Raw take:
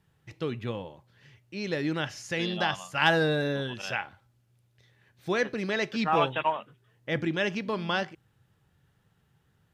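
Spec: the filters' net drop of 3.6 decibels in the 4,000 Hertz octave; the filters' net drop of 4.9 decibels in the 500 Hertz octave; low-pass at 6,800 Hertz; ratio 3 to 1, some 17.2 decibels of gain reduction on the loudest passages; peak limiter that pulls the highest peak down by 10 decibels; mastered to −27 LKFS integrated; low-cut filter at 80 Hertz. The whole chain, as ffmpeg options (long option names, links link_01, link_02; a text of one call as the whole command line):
ffmpeg -i in.wav -af "highpass=80,lowpass=6800,equalizer=frequency=500:width_type=o:gain=-6,equalizer=frequency=4000:width_type=o:gain=-4.5,acompressor=threshold=-44dB:ratio=3,volume=19.5dB,alimiter=limit=-16dB:level=0:latency=1" out.wav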